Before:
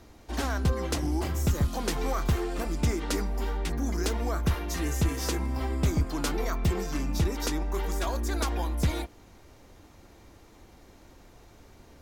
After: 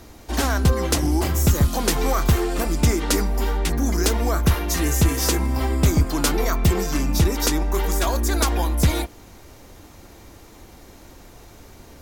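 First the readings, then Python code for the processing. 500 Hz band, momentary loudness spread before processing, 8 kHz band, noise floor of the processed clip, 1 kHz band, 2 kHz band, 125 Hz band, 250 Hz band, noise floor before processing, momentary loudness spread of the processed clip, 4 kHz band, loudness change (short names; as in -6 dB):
+8.0 dB, 4 LU, +12.0 dB, -46 dBFS, +8.0 dB, +8.5 dB, +8.0 dB, +8.0 dB, -54 dBFS, 4 LU, +9.5 dB, +8.5 dB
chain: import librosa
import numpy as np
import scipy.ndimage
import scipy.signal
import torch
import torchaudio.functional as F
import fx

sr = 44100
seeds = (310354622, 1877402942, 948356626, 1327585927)

y = fx.high_shelf(x, sr, hz=7500.0, db=8.0)
y = F.gain(torch.from_numpy(y), 8.0).numpy()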